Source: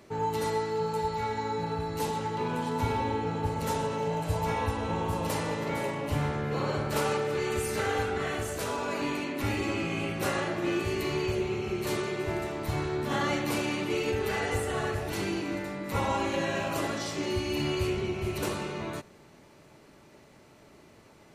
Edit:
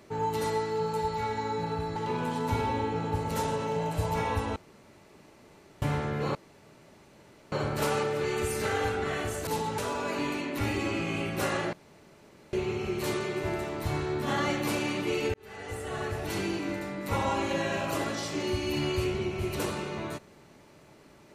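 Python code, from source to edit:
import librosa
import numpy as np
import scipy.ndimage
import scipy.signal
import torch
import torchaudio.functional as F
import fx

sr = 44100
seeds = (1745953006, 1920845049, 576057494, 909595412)

y = fx.edit(x, sr, fx.move(start_s=1.96, length_s=0.31, to_s=8.61),
    fx.room_tone_fill(start_s=4.87, length_s=1.26),
    fx.insert_room_tone(at_s=6.66, length_s=1.17),
    fx.room_tone_fill(start_s=10.56, length_s=0.8),
    fx.fade_in_span(start_s=14.17, length_s=0.95), tone=tone)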